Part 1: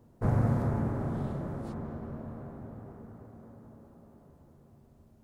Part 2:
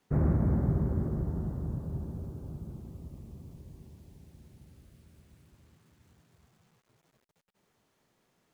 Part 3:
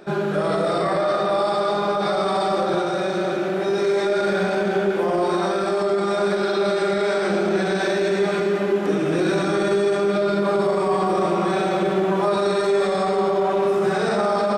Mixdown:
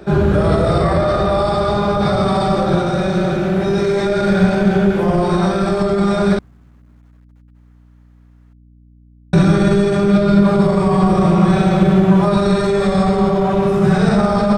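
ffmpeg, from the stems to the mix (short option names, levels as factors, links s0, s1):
-filter_complex "[0:a]highpass=f=140:w=0.5412,highpass=f=140:w=1.3066,adelay=1750,volume=0.708[s0];[1:a]equalizer=f=1400:t=o:w=1.9:g=13,volume=0.891[s1];[2:a]asubboost=boost=7.5:cutoff=120,volume=1.41,asplit=3[s2][s3][s4];[s2]atrim=end=6.39,asetpts=PTS-STARTPTS,afade=t=out:st=6.386:d=0.004:c=hsin[s5];[s3]atrim=start=6.39:end=9.33,asetpts=PTS-STARTPTS,volume=0[s6];[s4]atrim=start=9.33,asetpts=PTS-STARTPTS,afade=t=in:d=0.004:c=hsin[s7];[s5][s6][s7]concat=n=3:v=0:a=1[s8];[s0][s1][s8]amix=inputs=3:normalize=0,lowshelf=f=270:g=11,aeval=exprs='val(0)+0.00562*(sin(2*PI*60*n/s)+sin(2*PI*2*60*n/s)/2+sin(2*PI*3*60*n/s)/3+sin(2*PI*4*60*n/s)/4+sin(2*PI*5*60*n/s)/5)':c=same"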